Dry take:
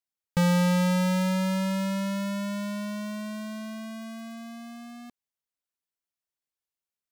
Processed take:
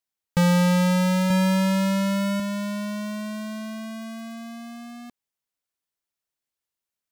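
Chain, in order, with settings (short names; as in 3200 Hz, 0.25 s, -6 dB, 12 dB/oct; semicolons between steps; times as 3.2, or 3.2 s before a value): 1.3–2.4 comb 1.3 ms, depth 90%; gain +3.5 dB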